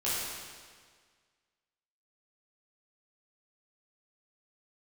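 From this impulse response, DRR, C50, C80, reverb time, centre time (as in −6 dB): −10.5 dB, −3.0 dB, 0.0 dB, 1.7 s, 122 ms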